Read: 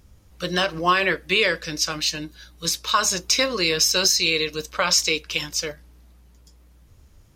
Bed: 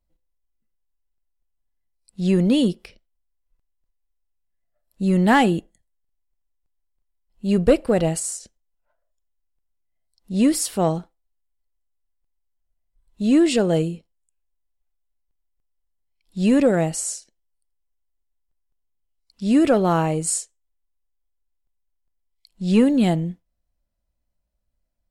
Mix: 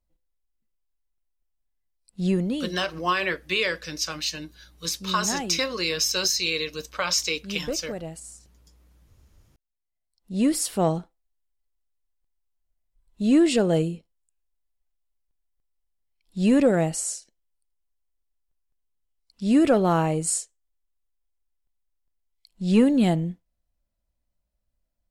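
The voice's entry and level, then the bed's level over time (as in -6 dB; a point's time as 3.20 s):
2.20 s, -5.0 dB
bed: 2.25 s -2.5 dB
2.72 s -15 dB
9.40 s -15 dB
10.66 s -2 dB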